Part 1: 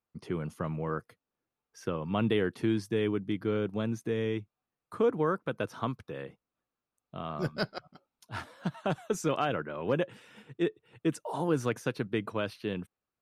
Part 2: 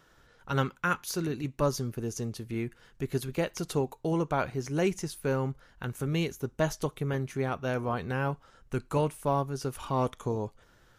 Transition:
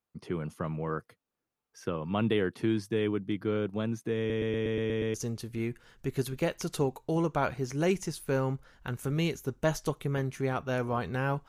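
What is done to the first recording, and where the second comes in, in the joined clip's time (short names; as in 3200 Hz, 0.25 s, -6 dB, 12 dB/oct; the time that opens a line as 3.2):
part 1
4.18 stutter in place 0.12 s, 8 plays
5.14 switch to part 2 from 2.1 s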